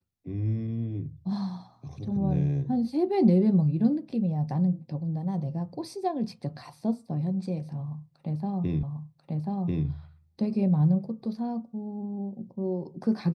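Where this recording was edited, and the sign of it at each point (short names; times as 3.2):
8.83 repeat of the last 1.04 s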